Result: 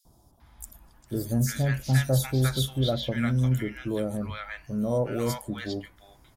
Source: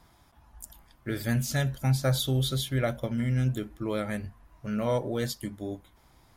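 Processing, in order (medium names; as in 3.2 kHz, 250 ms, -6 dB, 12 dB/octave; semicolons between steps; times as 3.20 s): three bands offset in time highs, lows, mids 50/400 ms, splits 900/4700 Hz; 2.91–3.63 s: tape noise reduction on one side only encoder only; trim +2.5 dB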